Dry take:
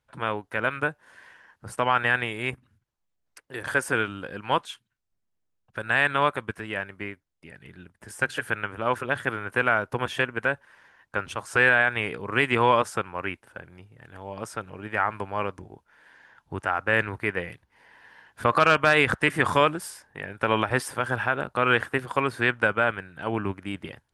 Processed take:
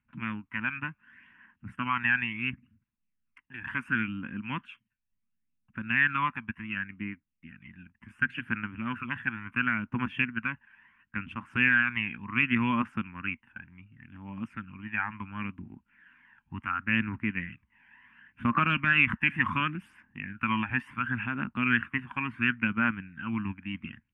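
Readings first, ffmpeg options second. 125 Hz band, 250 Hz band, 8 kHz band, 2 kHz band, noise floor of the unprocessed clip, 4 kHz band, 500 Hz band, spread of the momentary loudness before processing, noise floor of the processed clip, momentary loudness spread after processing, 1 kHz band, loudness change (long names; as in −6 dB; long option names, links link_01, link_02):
−2.5 dB, +1.0 dB, below −30 dB, −3.5 dB, −77 dBFS, −7.0 dB, −23.0 dB, 17 LU, −80 dBFS, 17 LU, −8.0 dB, −4.5 dB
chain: -af "aphaser=in_gain=1:out_gain=1:delay=1.3:decay=0.5:speed=0.7:type=triangular,firequalizer=gain_entry='entry(130,0);entry(230,12);entry(440,-20);entry(690,-16);entry(1000,-1);entry(2700,8);entry(4000,-23);entry(6800,-25)':delay=0.05:min_phase=1,volume=-8dB"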